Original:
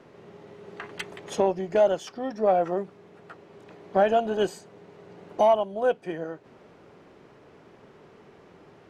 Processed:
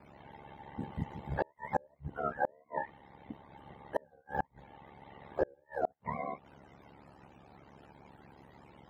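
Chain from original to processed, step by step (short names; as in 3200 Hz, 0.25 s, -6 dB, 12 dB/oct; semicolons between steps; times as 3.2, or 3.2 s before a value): spectrum mirrored in octaves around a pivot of 590 Hz; ring modulator 35 Hz; flipped gate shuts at -19 dBFS, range -37 dB; gain +1 dB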